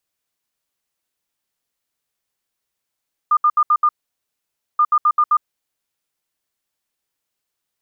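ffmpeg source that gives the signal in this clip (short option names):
-f lavfi -i "aevalsrc='0.299*sin(2*PI*1210*t)*clip(min(mod(mod(t,1.48),0.13),0.06-mod(mod(t,1.48),0.13))/0.005,0,1)*lt(mod(t,1.48),0.65)':d=2.96:s=44100"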